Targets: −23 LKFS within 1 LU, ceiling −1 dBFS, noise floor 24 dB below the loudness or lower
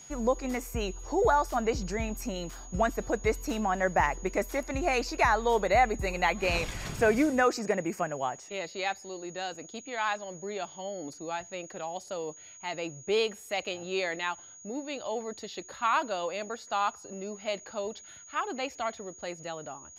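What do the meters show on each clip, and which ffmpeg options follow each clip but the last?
interfering tone 6,700 Hz; level of the tone −48 dBFS; integrated loudness −31.0 LKFS; sample peak −11.5 dBFS; target loudness −23.0 LKFS
→ -af "bandreject=frequency=6700:width=30"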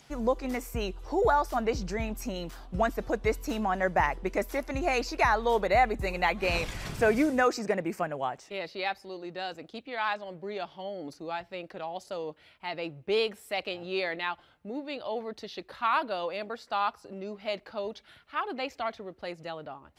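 interfering tone none found; integrated loudness −31.0 LKFS; sample peak −11.5 dBFS; target loudness −23.0 LKFS
→ -af "volume=8dB"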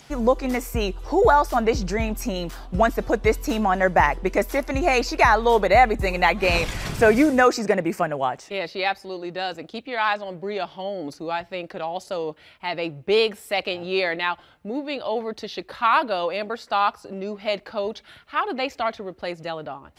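integrated loudness −23.0 LKFS; sample peak −3.5 dBFS; background noise floor −52 dBFS

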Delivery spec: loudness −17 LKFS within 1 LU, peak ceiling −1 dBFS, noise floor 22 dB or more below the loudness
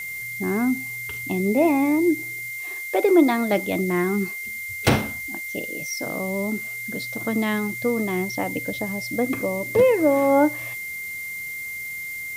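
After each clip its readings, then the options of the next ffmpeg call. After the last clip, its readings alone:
interfering tone 2,100 Hz; level of the tone −30 dBFS; background noise floor −33 dBFS; target noise floor −46 dBFS; integrated loudness −23.5 LKFS; sample peak −2.5 dBFS; target loudness −17.0 LKFS
→ -af "bandreject=frequency=2100:width=30"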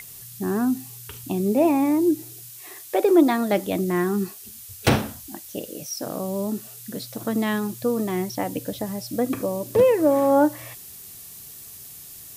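interfering tone none found; background noise floor −42 dBFS; target noise floor −45 dBFS
→ -af "afftdn=noise_reduction=6:noise_floor=-42"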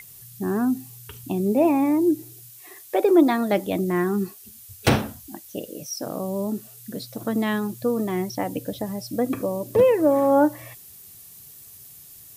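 background noise floor −46 dBFS; integrated loudness −23.0 LKFS; sample peak −3.5 dBFS; target loudness −17.0 LKFS
→ -af "volume=6dB,alimiter=limit=-1dB:level=0:latency=1"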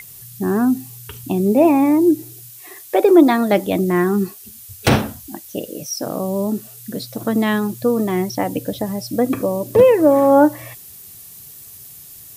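integrated loudness −17.0 LKFS; sample peak −1.0 dBFS; background noise floor −40 dBFS

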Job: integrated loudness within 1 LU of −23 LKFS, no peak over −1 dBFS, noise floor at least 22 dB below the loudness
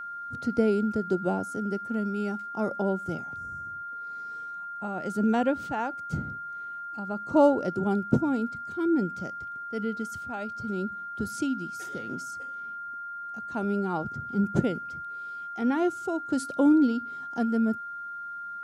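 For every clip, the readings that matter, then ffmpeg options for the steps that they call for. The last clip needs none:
interfering tone 1,400 Hz; level of the tone −35 dBFS; integrated loudness −29.5 LKFS; sample peak −8.5 dBFS; target loudness −23.0 LKFS
→ -af "bandreject=frequency=1400:width=30"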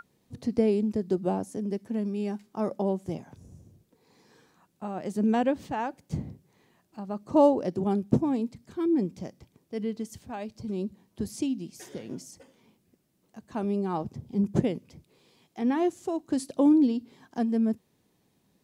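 interfering tone none found; integrated loudness −29.0 LKFS; sample peak −9.0 dBFS; target loudness −23.0 LKFS
→ -af "volume=6dB"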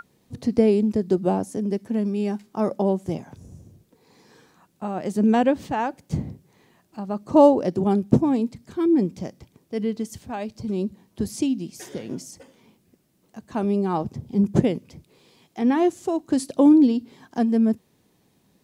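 integrated loudness −23.0 LKFS; sample peak −3.0 dBFS; background noise floor −64 dBFS

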